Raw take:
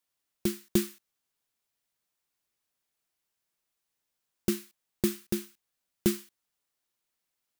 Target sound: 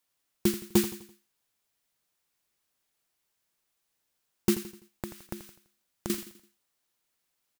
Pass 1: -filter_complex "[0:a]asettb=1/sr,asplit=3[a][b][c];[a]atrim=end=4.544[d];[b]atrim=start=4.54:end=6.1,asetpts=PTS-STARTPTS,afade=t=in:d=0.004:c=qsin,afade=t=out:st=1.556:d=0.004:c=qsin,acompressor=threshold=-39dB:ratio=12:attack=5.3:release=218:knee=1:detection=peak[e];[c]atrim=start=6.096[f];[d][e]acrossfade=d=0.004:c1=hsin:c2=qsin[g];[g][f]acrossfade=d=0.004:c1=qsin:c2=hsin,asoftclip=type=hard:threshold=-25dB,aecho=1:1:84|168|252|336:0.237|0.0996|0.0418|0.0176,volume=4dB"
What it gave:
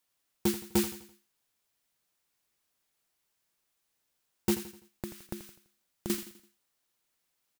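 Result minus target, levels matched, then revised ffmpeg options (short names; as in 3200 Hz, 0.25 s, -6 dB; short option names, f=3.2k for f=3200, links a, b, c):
hard clip: distortion +7 dB
-filter_complex "[0:a]asettb=1/sr,asplit=3[a][b][c];[a]atrim=end=4.544[d];[b]atrim=start=4.54:end=6.1,asetpts=PTS-STARTPTS,afade=t=in:d=0.004:c=qsin,afade=t=out:st=1.556:d=0.004:c=qsin,acompressor=threshold=-39dB:ratio=12:attack=5.3:release=218:knee=1:detection=peak[e];[c]atrim=start=6.096[f];[d][e]acrossfade=d=0.004:c1=hsin:c2=qsin[g];[g][f]acrossfade=d=0.004:c1=qsin:c2=hsin,asoftclip=type=hard:threshold=-18.5dB,aecho=1:1:84|168|252|336:0.237|0.0996|0.0418|0.0176,volume=4dB"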